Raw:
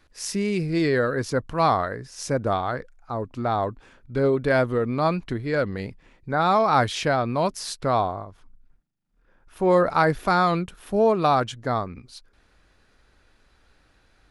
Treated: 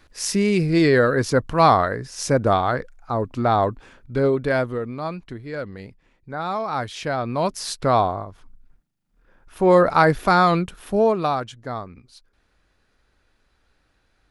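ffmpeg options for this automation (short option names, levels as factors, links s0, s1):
-af "volume=6.31,afade=t=out:st=3.64:d=1.34:silence=0.251189,afade=t=in:st=6.91:d=0.9:silence=0.298538,afade=t=out:st=10.79:d=0.62:silence=0.354813"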